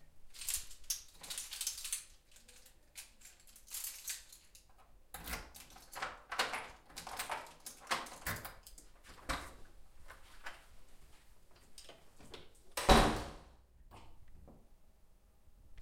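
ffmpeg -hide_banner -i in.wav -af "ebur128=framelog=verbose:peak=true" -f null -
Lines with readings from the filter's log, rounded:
Integrated loudness:
  I:         -38.7 LUFS
  Threshold: -51.7 LUFS
Loudness range:
  LRA:        14.0 LU
  Threshold: -61.6 LUFS
  LRA low:   -50.9 LUFS
  LRA high:  -36.9 LUFS
True peak:
  Peak:      -11.9 dBFS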